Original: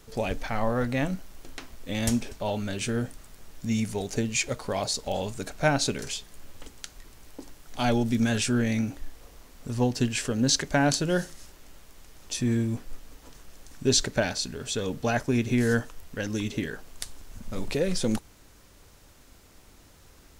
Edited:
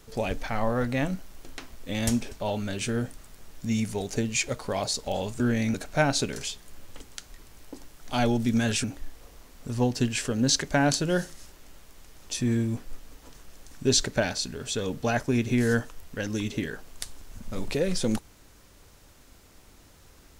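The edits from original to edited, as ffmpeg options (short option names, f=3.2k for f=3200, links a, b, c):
-filter_complex "[0:a]asplit=4[a][b][c][d];[a]atrim=end=5.402[e];[b]atrim=start=8.498:end=8.842[f];[c]atrim=start=5.398:end=8.502[g];[d]atrim=start=8.838[h];[e][f]acrossfade=d=0.004:c1=hsin:c2=hsin[i];[i][g]acrossfade=d=0.004:c1=hsin:c2=hsin[j];[j][h]acrossfade=d=0.004:c1=hsin:c2=hsin"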